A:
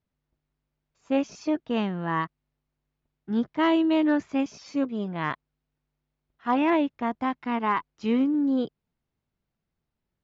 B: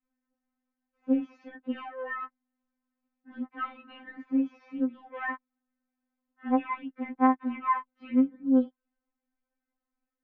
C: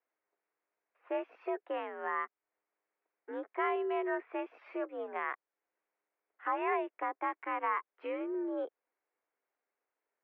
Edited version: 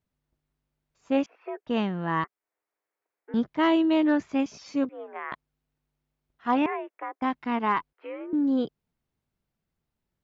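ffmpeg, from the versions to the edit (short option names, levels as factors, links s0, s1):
-filter_complex "[2:a]asplit=5[s0][s1][s2][s3][s4];[0:a]asplit=6[s5][s6][s7][s8][s9][s10];[s5]atrim=end=1.262[s11];[s0]atrim=start=1.258:end=1.672[s12];[s6]atrim=start=1.668:end=2.242[s13];[s1]atrim=start=2.238:end=3.342[s14];[s7]atrim=start=3.338:end=4.892[s15];[s2]atrim=start=4.888:end=5.322[s16];[s8]atrim=start=5.318:end=6.662[s17];[s3]atrim=start=6.658:end=7.222[s18];[s9]atrim=start=7.218:end=7.932[s19];[s4]atrim=start=7.928:end=8.332[s20];[s10]atrim=start=8.328[s21];[s11][s12]acrossfade=d=0.004:c1=hsin:c2=hsin[s22];[s22][s13]acrossfade=d=0.004:c1=hsin:c2=hsin[s23];[s23][s14]acrossfade=d=0.004:c1=hsin:c2=hsin[s24];[s24][s15]acrossfade=d=0.004:c1=hsin:c2=hsin[s25];[s25][s16]acrossfade=d=0.004:c1=hsin:c2=hsin[s26];[s26][s17]acrossfade=d=0.004:c1=hsin:c2=hsin[s27];[s27][s18]acrossfade=d=0.004:c1=hsin:c2=hsin[s28];[s28][s19]acrossfade=d=0.004:c1=hsin:c2=hsin[s29];[s29][s20]acrossfade=d=0.004:c1=hsin:c2=hsin[s30];[s30][s21]acrossfade=d=0.004:c1=hsin:c2=hsin"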